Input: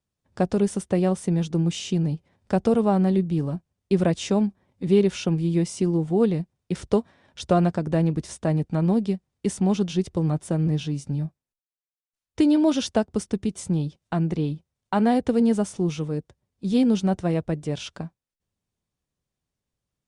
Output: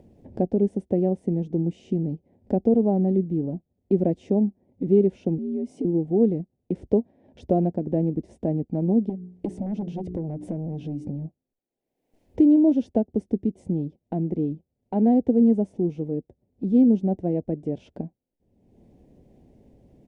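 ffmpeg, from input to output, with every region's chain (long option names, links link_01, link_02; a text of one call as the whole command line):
ffmpeg -i in.wav -filter_complex "[0:a]asettb=1/sr,asplit=3[link_01][link_02][link_03];[link_01]atrim=end=5.384[link_04];[link_02]atrim=start=5.38:end=5.85,asetpts=PTS-STARTPTS,afade=type=in:duration=0.004:curve=qsin,afade=type=out:start_time=0.466:duration=0.004:curve=qsin,acompressor=threshold=-31dB:ratio=5:attack=3.2:release=140:knee=1:detection=peak,afreqshift=67[link_05];[link_03]atrim=start=5.846[link_06];[link_04][link_05]acrossfade=duration=0.004:curve1=hsin:curve2=qsin[link_07];[link_07][link_06]acrossfade=duration=0.004:curve1=qsin:curve2=hsin,asettb=1/sr,asplit=3[link_08][link_09][link_10];[link_08]atrim=end=9.094[link_11];[link_09]atrim=start=9.09:end=11.26,asetpts=PTS-STARTPTS,afade=type=in:duration=0.004:curve=qsin,afade=type=out:start_time=2.166:duration=0.004:curve=qsin,aeval=exprs='0.251*sin(PI/2*2.24*val(0)/0.251)':channel_layout=same,bandreject=frequency=60:width_type=h:width=6,bandreject=frequency=120:width_type=h:width=6,bandreject=frequency=180:width_type=h:width=6,bandreject=frequency=240:width_type=h:width=6,bandreject=frequency=300:width_type=h:width=6,bandreject=frequency=360:width_type=h:width=6,bandreject=frequency=420:width_type=h:width=6,acompressor=threshold=-29dB:ratio=5:attack=3.2:release=140:knee=1:detection=peak[link_12];[link_10]atrim=start=11.256[link_13];[link_11][link_12]acrossfade=duration=0.004:curve1=hsin:curve2=qsin[link_14];[link_14][link_13]acrossfade=duration=0.004:curve1=qsin:curve2=hsin,acompressor=mode=upward:threshold=-23dB:ratio=2.5,firequalizer=gain_entry='entry(150,0);entry(240,9);entry(770,0);entry(1200,-24);entry(2000,-13);entry(3800,-21);entry(7400,-23)':delay=0.05:min_phase=1,volume=-5.5dB" out.wav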